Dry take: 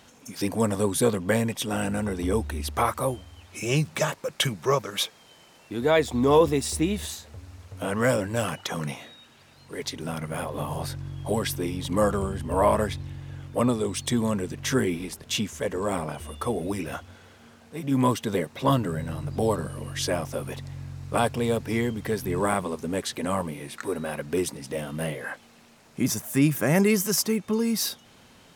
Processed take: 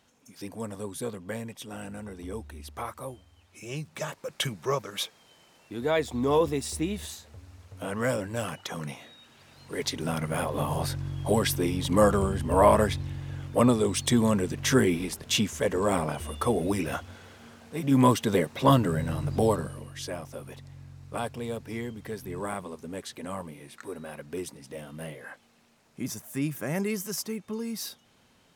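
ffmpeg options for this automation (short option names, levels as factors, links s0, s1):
-af "volume=1.26,afade=t=in:st=3.87:d=0.45:silence=0.446684,afade=t=in:st=9.01:d=0.78:silence=0.446684,afade=t=out:st=19.35:d=0.55:silence=0.281838"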